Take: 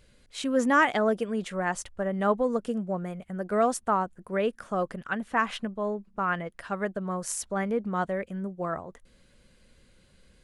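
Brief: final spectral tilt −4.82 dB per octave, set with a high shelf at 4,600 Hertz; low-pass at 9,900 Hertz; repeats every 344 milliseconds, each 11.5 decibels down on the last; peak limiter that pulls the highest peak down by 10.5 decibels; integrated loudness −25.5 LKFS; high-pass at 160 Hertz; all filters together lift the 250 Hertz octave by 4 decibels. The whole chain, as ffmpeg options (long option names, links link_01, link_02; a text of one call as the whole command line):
ffmpeg -i in.wav -af "highpass=160,lowpass=9900,equalizer=frequency=250:width_type=o:gain=6,highshelf=frequency=4600:gain=6.5,alimiter=limit=-20dB:level=0:latency=1,aecho=1:1:344|688|1032:0.266|0.0718|0.0194,volume=5dB" out.wav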